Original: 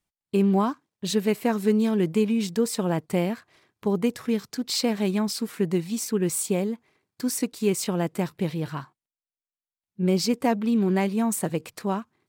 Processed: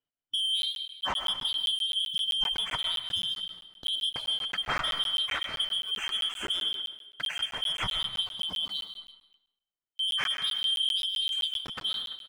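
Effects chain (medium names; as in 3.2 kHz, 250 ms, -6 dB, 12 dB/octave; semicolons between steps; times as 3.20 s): four frequency bands reordered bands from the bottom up 3412; spectral gate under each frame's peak -25 dB strong; low-pass 2.4 kHz 12 dB/octave; tilt EQ -1.5 dB/octave; waveshaping leveller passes 2; compression 6:1, threshold -29 dBFS, peak gain reduction 7 dB; speakerphone echo 340 ms, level -17 dB; reverberation RT60 0.85 s, pre-delay 80 ms, DRR 6.5 dB; crackling interface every 0.13 s, samples 512, zero, from 0.62 s; trim +1 dB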